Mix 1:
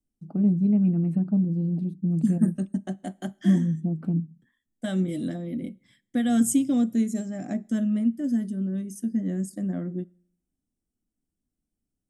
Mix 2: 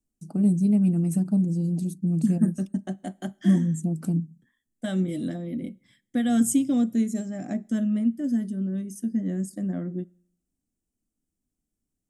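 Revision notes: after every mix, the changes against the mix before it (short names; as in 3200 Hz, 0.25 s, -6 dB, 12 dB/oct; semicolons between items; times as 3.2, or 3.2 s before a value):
first voice: remove air absorption 450 m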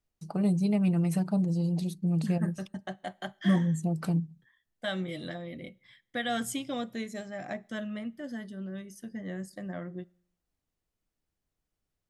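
second voice -5.5 dB; master: add graphic EQ 125/250/500/1000/2000/4000/8000 Hz +4/-12/+5/+9/+8/+11/-8 dB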